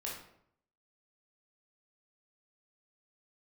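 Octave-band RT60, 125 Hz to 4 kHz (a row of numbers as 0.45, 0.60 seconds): 0.80, 0.75, 0.70, 0.65, 0.55, 0.45 seconds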